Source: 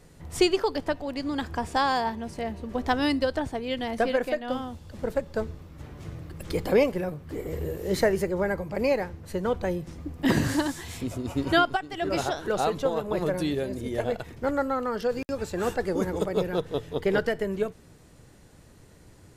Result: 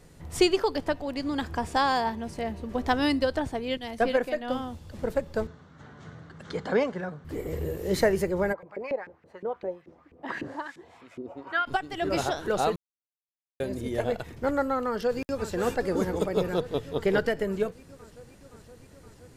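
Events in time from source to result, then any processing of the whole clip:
3.77–4.35 three-band expander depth 100%
5.47–7.25 speaker cabinet 170–6400 Hz, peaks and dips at 330 Hz -10 dB, 540 Hz -5 dB, 1500 Hz +7 dB, 2500 Hz -10 dB, 5100 Hz -7 dB
8.52–11.66 LFO band-pass saw up 8 Hz -> 1.7 Hz 320–2400 Hz
12.76–13.6 mute
14.87–15.5 echo throw 0.52 s, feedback 75%, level -10.5 dB

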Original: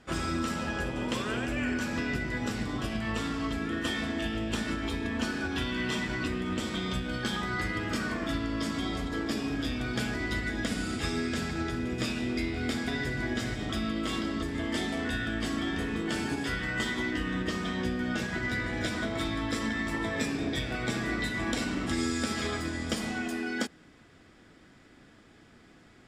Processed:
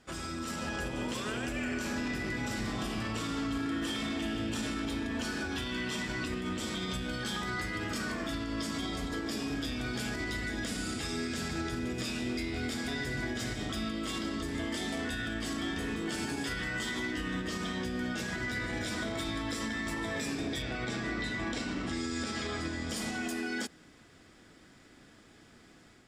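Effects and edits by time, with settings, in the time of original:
1.5–4.88 reverb throw, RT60 2.3 s, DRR 1 dB
20.62–22.91 air absorption 78 m
whole clip: tone controls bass -1 dB, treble +6 dB; limiter -25 dBFS; AGC gain up to 4 dB; gain -5 dB

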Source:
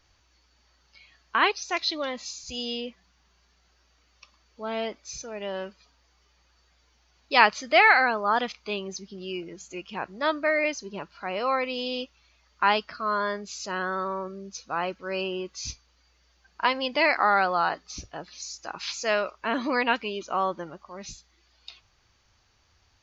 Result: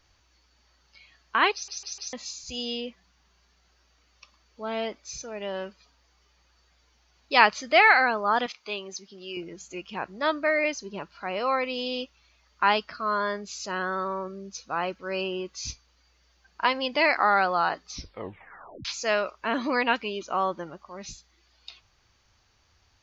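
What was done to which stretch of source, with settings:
1.53 stutter in place 0.15 s, 4 plays
8.46–9.37 HPF 510 Hz 6 dB/oct
17.92 tape stop 0.93 s

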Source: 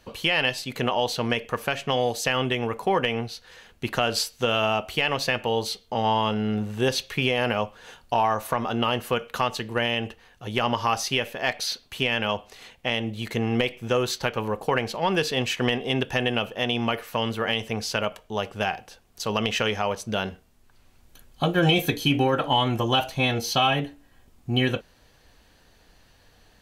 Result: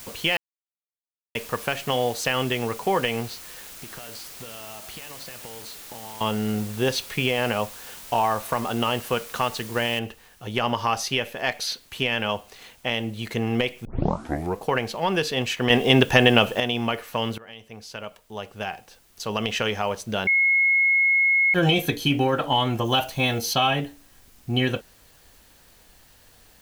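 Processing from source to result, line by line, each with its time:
0.37–1.35 mute
3.34–6.21 compressor 16:1, threshold -37 dBFS
9.99 noise floor step -42 dB -57 dB
13.85 tape start 0.76 s
15.7–16.6 gain +8.5 dB
17.38–19.76 fade in, from -21.5 dB
20.27–21.54 bleep 2170 Hz -16 dBFS
22.85–23.54 high shelf 8700 Hz +8.5 dB

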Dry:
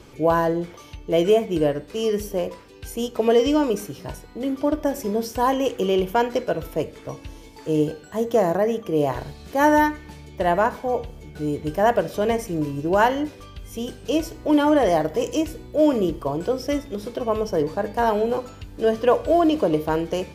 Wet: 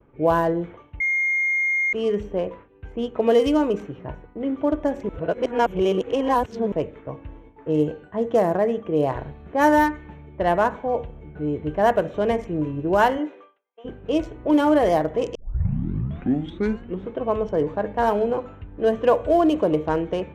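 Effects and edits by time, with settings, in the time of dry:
1–1.93 bleep 2130 Hz -18 dBFS
5.09–6.72 reverse
13.17–13.84 HPF 220 Hz -> 690 Hz 24 dB/oct
15.35 tape start 1.79 s
whole clip: Wiener smoothing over 9 samples; low-pass opened by the level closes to 1600 Hz, open at -14.5 dBFS; expander -40 dBFS

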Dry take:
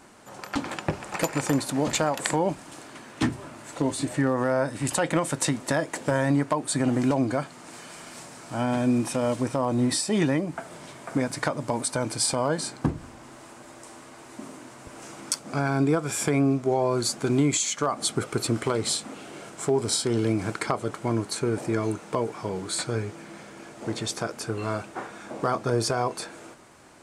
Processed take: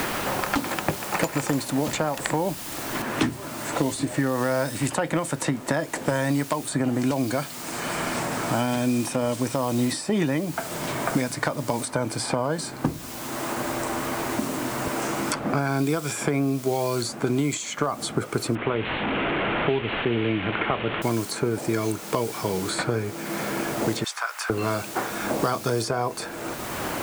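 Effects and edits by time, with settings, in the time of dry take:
3.02 noise floor step -41 dB -51 dB
18.55–21.02 delta modulation 16 kbps, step -27 dBFS
24.04–24.5 HPF 1000 Hz 24 dB/oct
whole clip: three-band squash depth 100%

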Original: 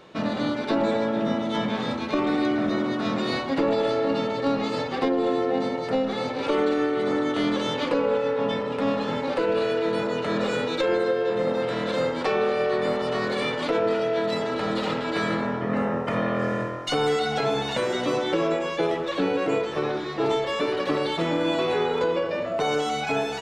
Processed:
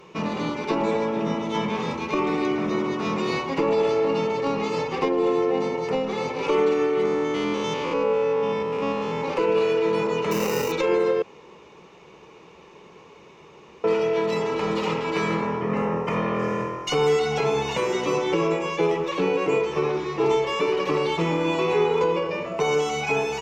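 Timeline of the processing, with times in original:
7.05–9.22 stepped spectrum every 0.1 s
10.31–10.72 sample-rate reducer 3300 Hz
11.22–13.84 room tone
whole clip: ripple EQ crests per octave 0.77, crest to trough 10 dB

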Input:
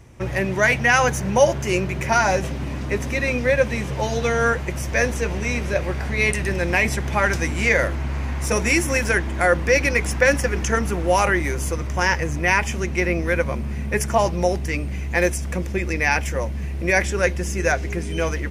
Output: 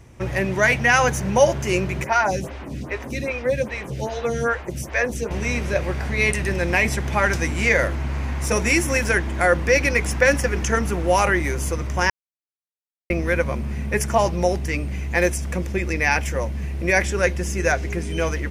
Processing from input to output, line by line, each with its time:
2.04–5.31 photocell phaser 2.5 Hz
12.1–13.1 mute

